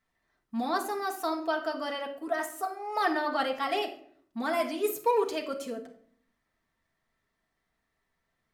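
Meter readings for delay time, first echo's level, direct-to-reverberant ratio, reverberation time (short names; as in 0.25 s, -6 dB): none, none, 1.5 dB, 0.55 s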